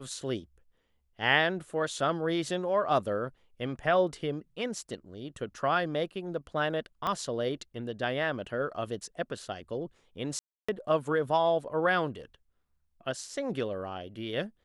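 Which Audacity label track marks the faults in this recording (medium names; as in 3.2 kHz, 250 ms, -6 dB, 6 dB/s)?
7.070000	7.070000	pop -18 dBFS
10.390000	10.690000	dropout 295 ms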